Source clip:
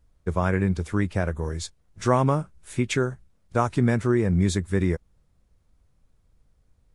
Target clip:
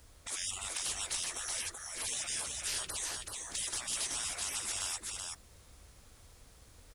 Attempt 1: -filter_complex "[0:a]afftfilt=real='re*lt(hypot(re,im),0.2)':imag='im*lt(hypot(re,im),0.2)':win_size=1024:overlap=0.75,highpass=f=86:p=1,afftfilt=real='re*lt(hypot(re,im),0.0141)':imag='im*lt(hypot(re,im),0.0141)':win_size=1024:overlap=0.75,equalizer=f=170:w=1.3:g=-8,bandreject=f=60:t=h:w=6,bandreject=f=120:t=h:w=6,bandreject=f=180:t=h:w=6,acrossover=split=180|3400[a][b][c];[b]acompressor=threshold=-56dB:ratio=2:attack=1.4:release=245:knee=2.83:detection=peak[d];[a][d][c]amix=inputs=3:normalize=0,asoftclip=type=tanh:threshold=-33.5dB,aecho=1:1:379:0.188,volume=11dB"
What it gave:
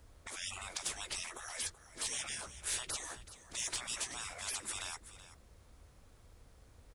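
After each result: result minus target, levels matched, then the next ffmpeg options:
echo-to-direct -11 dB; 2000 Hz band +2.5 dB
-filter_complex "[0:a]afftfilt=real='re*lt(hypot(re,im),0.2)':imag='im*lt(hypot(re,im),0.2)':win_size=1024:overlap=0.75,highpass=f=86:p=1,afftfilt=real='re*lt(hypot(re,im),0.0141)':imag='im*lt(hypot(re,im),0.0141)':win_size=1024:overlap=0.75,equalizer=f=170:w=1.3:g=-8,bandreject=f=60:t=h:w=6,bandreject=f=120:t=h:w=6,bandreject=f=180:t=h:w=6,acrossover=split=180|3400[a][b][c];[b]acompressor=threshold=-56dB:ratio=2:attack=1.4:release=245:knee=2.83:detection=peak[d];[a][d][c]amix=inputs=3:normalize=0,asoftclip=type=tanh:threshold=-33.5dB,aecho=1:1:379:0.668,volume=11dB"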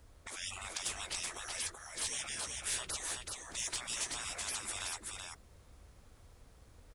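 2000 Hz band +3.0 dB
-filter_complex "[0:a]afftfilt=real='re*lt(hypot(re,im),0.2)':imag='im*lt(hypot(re,im),0.2)':win_size=1024:overlap=0.75,highpass=f=86:p=1,highshelf=f=2.3k:g=9.5,afftfilt=real='re*lt(hypot(re,im),0.0141)':imag='im*lt(hypot(re,im),0.0141)':win_size=1024:overlap=0.75,equalizer=f=170:w=1.3:g=-8,bandreject=f=60:t=h:w=6,bandreject=f=120:t=h:w=6,bandreject=f=180:t=h:w=6,acrossover=split=180|3400[a][b][c];[b]acompressor=threshold=-56dB:ratio=2:attack=1.4:release=245:knee=2.83:detection=peak[d];[a][d][c]amix=inputs=3:normalize=0,asoftclip=type=tanh:threshold=-33.5dB,aecho=1:1:379:0.668,volume=11dB"

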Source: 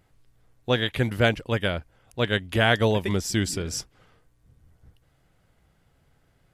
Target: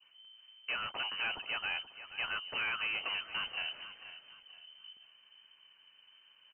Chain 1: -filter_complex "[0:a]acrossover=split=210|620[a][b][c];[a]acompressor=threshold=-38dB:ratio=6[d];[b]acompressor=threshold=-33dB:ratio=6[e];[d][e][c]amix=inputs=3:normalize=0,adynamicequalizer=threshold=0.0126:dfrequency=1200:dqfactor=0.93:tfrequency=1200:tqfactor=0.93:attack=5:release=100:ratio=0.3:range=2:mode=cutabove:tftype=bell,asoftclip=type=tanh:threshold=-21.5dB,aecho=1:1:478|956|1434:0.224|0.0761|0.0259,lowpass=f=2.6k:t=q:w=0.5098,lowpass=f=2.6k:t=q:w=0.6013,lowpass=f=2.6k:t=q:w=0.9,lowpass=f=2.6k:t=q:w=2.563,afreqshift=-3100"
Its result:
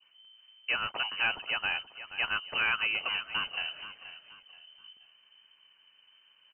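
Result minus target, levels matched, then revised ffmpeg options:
soft clip: distortion -6 dB
-filter_complex "[0:a]acrossover=split=210|620[a][b][c];[a]acompressor=threshold=-38dB:ratio=6[d];[b]acompressor=threshold=-33dB:ratio=6[e];[d][e][c]amix=inputs=3:normalize=0,adynamicequalizer=threshold=0.0126:dfrequency=1200:dqfactor=0.93:tfrequency=1200:tqfactor=0.93:attack=5:release=100:ratio=0.3:range=2:mode=cutabove:tftype=bell,asoftclip=type=tanh:threshold=-32dB,aecho=1:1:478|956|1434:0.224|0.0761|0.0259,lowpass=f=2.6k:t=q:w=0.5098,lowpass=f=2.6k:t=q:w=0.6013,lowpass=f=2.6k:t=q:w=0.9,lowpass=f=2.6k:t=q:w=2.563,afreqshift=-3100"

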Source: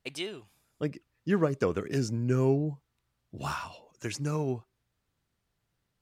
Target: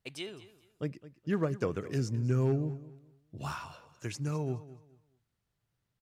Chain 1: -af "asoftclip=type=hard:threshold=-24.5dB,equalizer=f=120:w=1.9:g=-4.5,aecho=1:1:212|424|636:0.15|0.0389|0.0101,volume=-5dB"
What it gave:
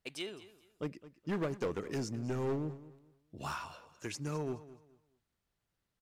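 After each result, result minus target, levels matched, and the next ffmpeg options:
hard clip: distortion +18 dB; 125 Hz band -4.5 dB
-af "asoftclip=type=hard:threshold=-16.5dB,equalizer=f=120:w=1.9:g=-4.5,aecho=1:1:212|424|636:0.15|0.0389|0.0101,volume=-5dB"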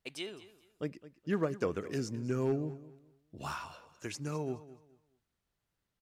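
125 Hz band -5.0 dB
-af "asoftclip=type=hard:threshold=-16.5dB,equalizer=f=120:w=1.9:g=5.5,aecho=1:1:212|424|636:0.15|0.0389|0.0101,volume=-5dB"

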